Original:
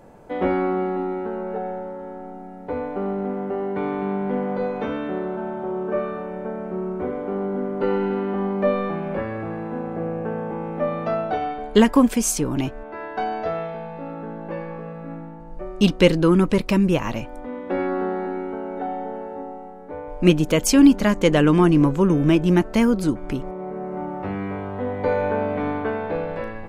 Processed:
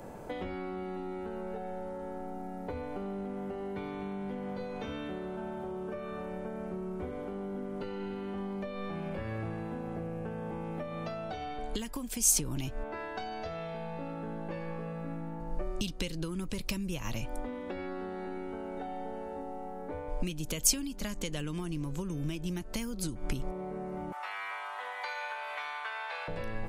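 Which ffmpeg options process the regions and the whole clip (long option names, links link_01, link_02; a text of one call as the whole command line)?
ffmpeg -i in.wav -filter_complex "[0:a]asettb=1/sr,asplit=3[link_01][link_02][link_03];[link_01]atrim=end=24.124[link_04];[link_02]atrim=start=24.12:end=26.28,asetpts=PTS-STARTPTS,afade=type=in:duration=0.004:curve=qsin,afade=type=out:start_time=2.156:duration=0.004:curve=qsin,highpass=frequency=940:width=0.5412,highpass=frequency=940:width=1.3066,acontrast=37[link_05];[link_03]atrim=start=26.276[link_06];[link_04][link_05]acrossfade=duration=0.004:curve1=hsin:curve2=qsin[link_07];[link_07][link_06]acrossfade=duration=0.004:curve1=qsin:curve2=hsin,acompressor=threshold=-25dB:ratio=6,highshelf=frequency=7100:gain=6.5,acrossover=split=120|3000[link_08][link_09][link_10];[link_09]acompressor=threshold=-40dB:ratio=6[link_11];[link_08][link_11][link_10]amix=inputs=3:normalize=0,volume=2dB" out.wav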